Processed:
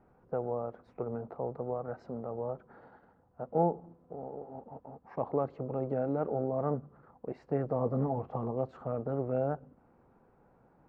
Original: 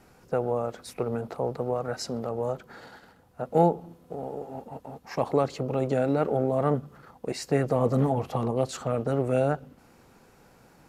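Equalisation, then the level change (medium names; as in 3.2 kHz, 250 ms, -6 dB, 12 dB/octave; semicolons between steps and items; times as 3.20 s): Chebyshev low-pass 1 kHz, order 2; -6.5 dB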